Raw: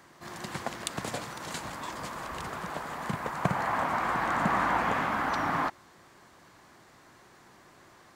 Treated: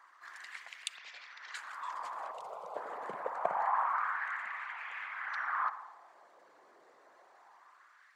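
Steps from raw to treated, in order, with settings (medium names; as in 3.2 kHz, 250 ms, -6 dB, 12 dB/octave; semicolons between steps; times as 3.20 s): resonances exaggerated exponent 1.5; 0.97–1.55 s: elliptic band-pass 110–5400 Hz; 2.31–2.76 s: static phaser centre 710 Hz, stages 4; spring tank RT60 1.1 s, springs 55 ms, chirp 45 ms, DRR 12.5 dB; LFO high-pass sine 0.26 Hz 460–2400 Hz; trim -7.5 dB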